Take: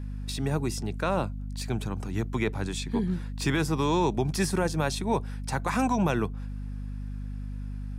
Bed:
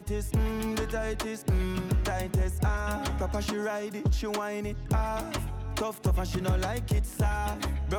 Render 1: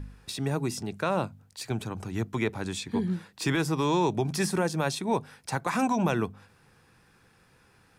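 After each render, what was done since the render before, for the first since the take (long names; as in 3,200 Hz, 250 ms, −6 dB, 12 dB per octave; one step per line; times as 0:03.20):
hum removal 50 Hz, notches 5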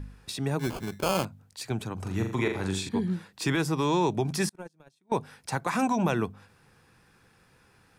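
0:00.59–0:01.25: sample-rate reduction 1,900 Hz
0:01.94–0:02.89: flutter between parallel walls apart 7.2 metres, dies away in 0.51 s
0:04.49–0:05.12: noise gate −23 dBFS, range −37 dB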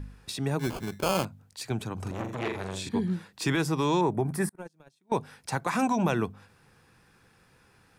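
0:02.11–0:02.87: saturating transformer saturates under 1,200 Hz
0:04.01–0:04.58: flat-topped bell 4,200 Hz −14 dB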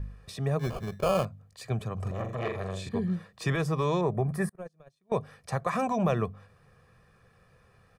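high-shelf EQ 2,300 Hz −10.5 dB
comb filter 1.7 ms, depth 68%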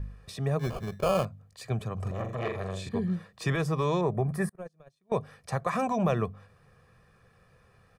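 no processing that can be heard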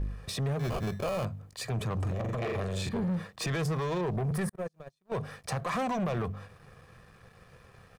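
brickwall limiter −26 dBFS, peak gain reduction 12 dB
leveller curve on the samples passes 2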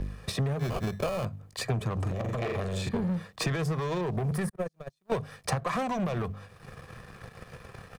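transient designer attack +8 dB, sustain −4 dB
multiband upward and downward compressor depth 40%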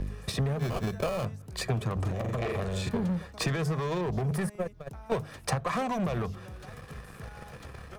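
mix in bed −18.5 dB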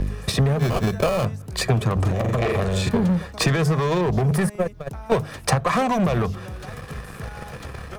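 level +9.5 dB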